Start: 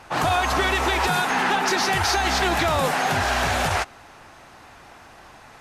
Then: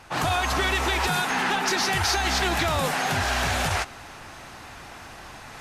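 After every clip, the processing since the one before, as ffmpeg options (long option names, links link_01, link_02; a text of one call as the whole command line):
ffmpeg -i in.wav -af "equalizer=frequency=650:width=0.42:gain=-4.5,areverse,acompressor=mode=upward:threshold=-33dB:ratio=2.5,areverse" out.wav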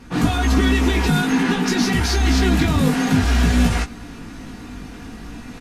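ffmpeg -i in.wav -af "lowshelf=frequency=440:width_type=q:width=1.5:gain=12.5,aecho=1:1:4.2:0.49,flanger=delay=16.5:depth=3.5:speed=0.53,volume=2.5dB" out.wav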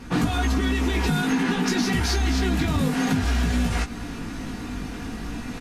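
ffmpeg -i in.wav -af "acompressor=threshold=-22dB:ratio=6,volume=2.5dB" out.wav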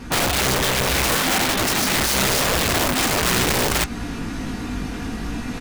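ffmpeg -i in.wav -af "aeval=exprs='(mod(9.44*val(0)+1,2)-1)/9.44':channel_layout=same,volume=4.5dB" out.wav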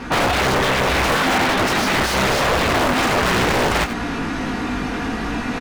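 ffmpeg -i in.wav -filter_complex "[0:a]aecho=1:1:91:0.133,asplit=2[link_01][link_02];[link_02]highpass=frequency=720:poles=1,volume=14dB,asoftclip=type=tanh:threshold=-13.5dB[link_03];[link_01][link_03]amix=inputs=2:normalize=0,lowpass=frequency=1600:poles=1,volume=-6dB,volume=4dB" out.wav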